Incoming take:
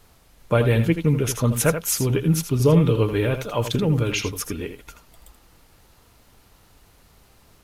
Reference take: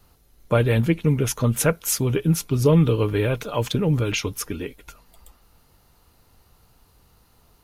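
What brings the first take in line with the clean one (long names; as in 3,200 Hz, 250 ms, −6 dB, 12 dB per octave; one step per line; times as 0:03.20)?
click removal
downward expander −47 dBFS, range −21 dB
echo removal 81 ms −9.5 dB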